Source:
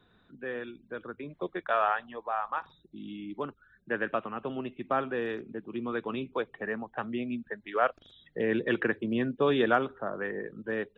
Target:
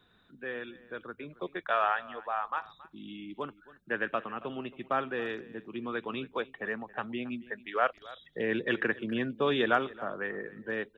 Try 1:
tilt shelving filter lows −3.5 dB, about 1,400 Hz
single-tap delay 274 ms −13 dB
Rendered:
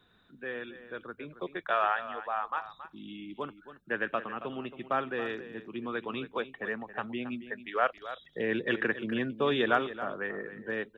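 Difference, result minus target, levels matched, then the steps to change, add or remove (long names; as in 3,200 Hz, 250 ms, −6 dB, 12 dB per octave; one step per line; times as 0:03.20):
echo-to-direct +6.5 dB
change: single-tap delay 274 ms −19.5 dB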